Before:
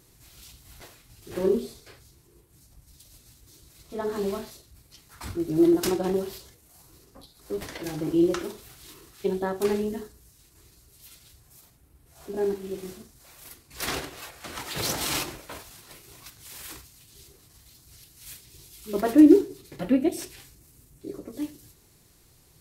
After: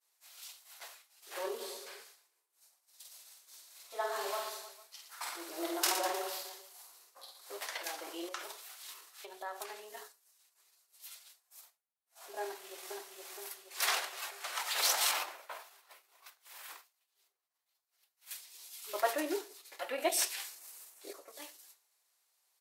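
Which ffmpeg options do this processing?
-filter_complex "[0:a]asplit=3[s0][s1][s2];[s0]afade=t=out:st=1.59:d=0.02[s3];[s1]aecho=1:1:50|115|199.5|309.4|452.2:0.631|0.398|0.251|0.158|0.1,afade=t=in:st=1.59:d=0.02,afade=t=out:st=7.57:d=0.02[s4];[s2]afade=t=in:st=7.57:d=0.02[s5];[s3][s4][s5]amix=inputs=3:normalize=0,asettb=1/sr,asplit=3[s6][s7][s8];[s6]atrim=end=8.284[s9];[s7]atrim=start=8.28:end=9.97,asetpts=PTS-STARTPTS,afade=t=in:d=0.004:c=qsin,afade=t=out:st=1.686:d=0.004:c=qsin,acompressor=threshold=0.0282:ratio=6:attack=3.2:release=140:knee=1:detection=peak[s10];[s8]atrim=start=9.966[s11];[s9][s10]acrossfade=d=0.004:c1=hsin:c2=qsin[s12];[s12][s11]acrossfade=d=0.004:c1=qsin:c2=hsin,asplit=2[s13][s14];[s14]afade=t=in:st=12.43:d=0.01,afade=t=out:st=12.9:d=0.01,aecho=0:1:470|940|1410|1880|2350|2820|3290|3760:0.749894|0.412442|0.226843|0.124764|0.06862|0.037741|0.0207576|0.0114167[s15];[s13][s15]amix=inputs=2:normalize=0,asettb=1/sr,asplit=3[s16][s17][s18];[s16]atrim=end=15.114[s19];[s17]atrim=start=15.11:end=18.31,asetpts=PTS-STARTPTS,afade=t=in:d=0.004:c=qsin,afade=t=out:st=3.196:d=0.004:c=qsin,equalizer=f=7800:w=0.31:g=-11[s20];[s18]atrim=start=18.306[s21];[s19][s20]acrossfade=d=0.004:c1=hsin:c2=qsin[s22];[s22][s21]acrossfade=d=0.004:c1=qsin:c2=hsin,asettb=1/sr,asplit=3[s23][s24][s25];[s23]atrim=end=19.984[s26];[s24]atrim=start=19.98:end=21.13,asetpts=PTS-STARTPTS,afade=t=in:d=0.004:c=qsin,afade=t=out:st=1.146:d=0.004:c=qsin,acontrast=90[s27];[s25]atrim=start=21.126[s28];[s26][s27]acrossfade=d=0.004:c1=hsin:c2=qsin[s29];[s29][s28]acrossfade=d=0.004:c1=qsin:c2=hsin,highpass=f=660:w=0.5412,highpass=f=660:w=1.3066,agate=range=0.0224:threshold=0.00282:ratio=3:detection=peak"

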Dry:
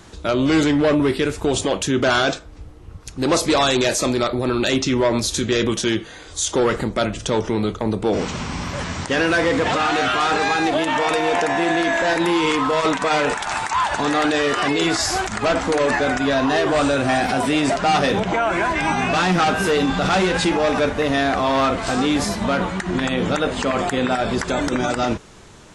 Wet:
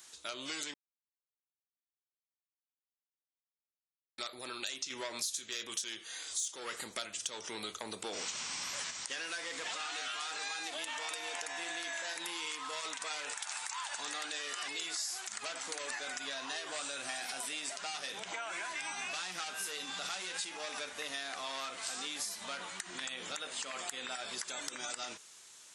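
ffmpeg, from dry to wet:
-filter_complex "[0:a]asettb=1/sr,asplit=3[s0][s1][s2];[s0]atrim=end=4.904[s3];[s1]atrim=start=4.9:end=8.91,asetpts=PTS-STARTPTS,afade=t=in:d=0.004:c=qsin,afade=t=out:st=4.006:d=0.004:c=qsin,acontrast=61[s4];[s2]atrim=start=8.906[s5];[s3][s4]acrossfade=d=0.004:c1=hsin:c2=qsin[s6];[s6][s5]acrossfade=d=0.004:c1=qsin:c2=hsin,asplit=3[s7][s8][s9];[s7]atrim=end=0.74,asetpts=PTS-STARTPTS,afade=t=out:st=0.736:d=0.004:c=hsin[s10];[s8]atrim=start=0.74:end=4.18,asetpts=PTS-STARTPTS,volume=0[s11];[s9]atrim=start=4.18,asetpts=PTS-STARTPTS,afade=t=in:d=0.004:c=hsin[s12];[s10][s11][s12]concat=n=3:v=0:a=1,aderivative,acompressor=threshold=0.0178:ratio=5,volume=0.841"

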